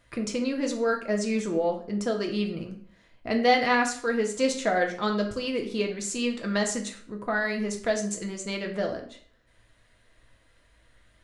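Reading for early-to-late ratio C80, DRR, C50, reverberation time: 13.0 dB, 2.0 dB, 9.0 dB, 0.55 s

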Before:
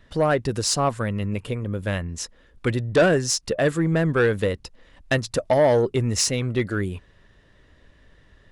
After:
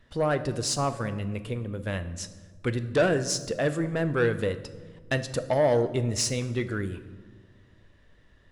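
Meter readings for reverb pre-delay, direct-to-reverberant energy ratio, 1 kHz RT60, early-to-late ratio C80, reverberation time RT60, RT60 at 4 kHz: 8 ms, 10.5 dB, 1.3 s, 15.0 dB, 1.5 s, 0.85 s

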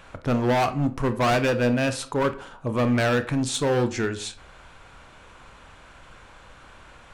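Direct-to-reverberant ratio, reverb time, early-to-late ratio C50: 9.5 dB, 0.45 s, 15.0 dB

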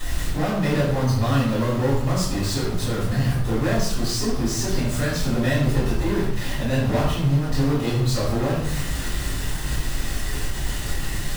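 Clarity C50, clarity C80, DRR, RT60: 1.5 dB, 4.5 dB, −14.5 dB, 0.85 s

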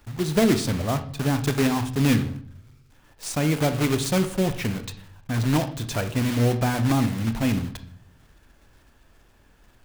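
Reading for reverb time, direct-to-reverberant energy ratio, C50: 0.55 s, 9.5 dB, 12.5 dB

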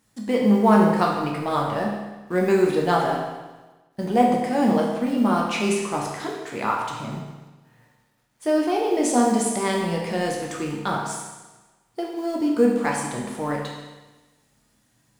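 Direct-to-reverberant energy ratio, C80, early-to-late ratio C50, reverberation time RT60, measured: −2.0 dB, 4.5 dB, 2.5 dB, 1.2 s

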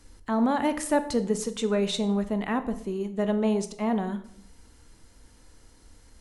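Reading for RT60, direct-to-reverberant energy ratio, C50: 0.65 s, 10.5 dB, 13.5 dB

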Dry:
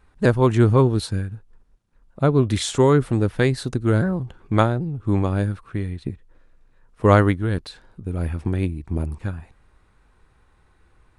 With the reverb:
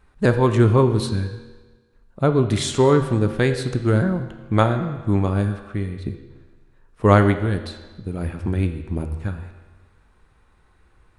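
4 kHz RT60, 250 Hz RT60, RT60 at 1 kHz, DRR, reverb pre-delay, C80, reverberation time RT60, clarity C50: 1.2 s, 1.3 s, 1.3 s, 6.5 dB, 4 ms, 10.5 dB, 1.3 s, 9.0 dB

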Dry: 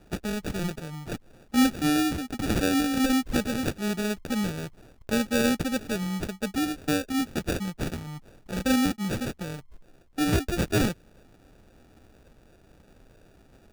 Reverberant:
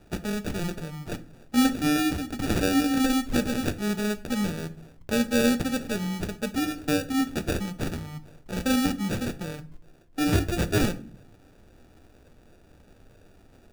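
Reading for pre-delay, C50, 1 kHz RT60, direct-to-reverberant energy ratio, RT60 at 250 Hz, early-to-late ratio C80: 7 ms, 16.5 dB, 0.35 s, 10.0 dB, 0.70 s, 21.5 dB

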